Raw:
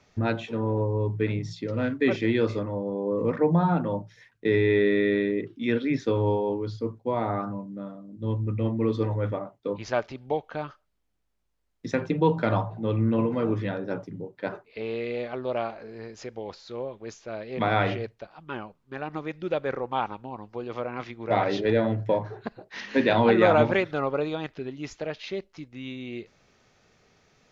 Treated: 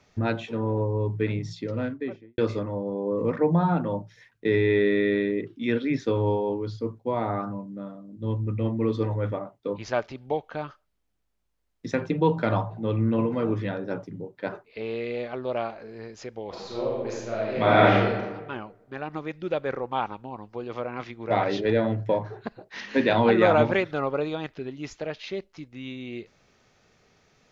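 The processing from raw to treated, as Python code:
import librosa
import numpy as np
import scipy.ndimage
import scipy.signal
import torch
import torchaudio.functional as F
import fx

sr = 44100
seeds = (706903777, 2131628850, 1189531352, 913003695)

y = fx.studio_fade_out(x, sr, start_s=1.6, length_s=0.78)
y = fx.reverb_throw(y, sr, start_s=16.48, length_s=1.72, rt60_s=1.2, drr_db=-5.5)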